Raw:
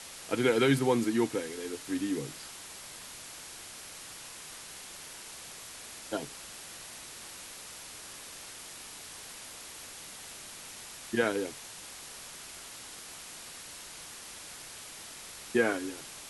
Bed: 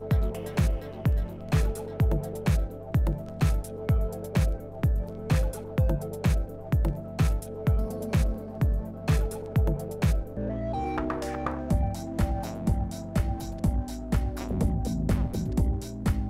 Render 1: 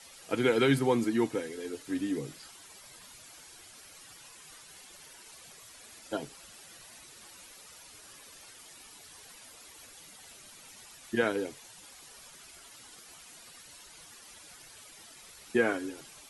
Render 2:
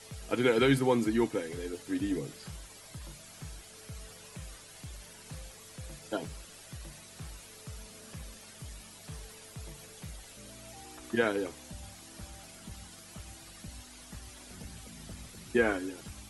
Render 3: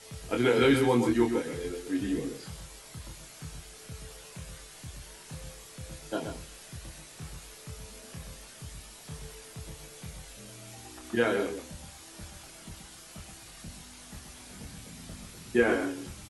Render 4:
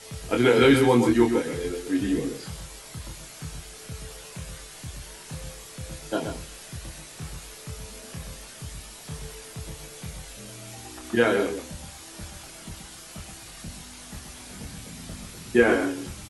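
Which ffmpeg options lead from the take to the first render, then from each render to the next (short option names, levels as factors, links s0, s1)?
-af "afftdn=nr=11:nf=-47"
-filter_complex "[1:a]volume=0.0841[s0];[0:a][s0]amix=inputs=2:normalize=0"
-filter_complex "[0:a]asplit=2[s0][s1];[s1]adelay=25,volume=0.631[s2];[s0][s2]amix=inputs=2:normalize=0,asplit=2[s3][s4];[s4]adelay=128.3,volume=0.447,highshelf=f=4000:g=-2.89[s5];[s3][s5]amix=inputs=2:normalize=0"
-af "volume=1.88"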